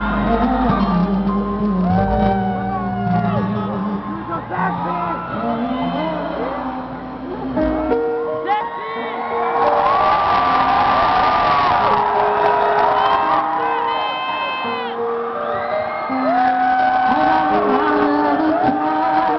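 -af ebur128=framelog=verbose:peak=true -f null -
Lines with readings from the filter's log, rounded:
Integrated loudness:
  I:         -17.7 LUFS
  Threshold: -27.7 LUFS
Loudness range:
  LRA:         6.9 LU
  Threshold: -37.9 LUFS
  LRA low:   -21.8 LUFS
  LRA high:  -14.9 LUFS
True peak:
  Peak:       -6.5 dBFS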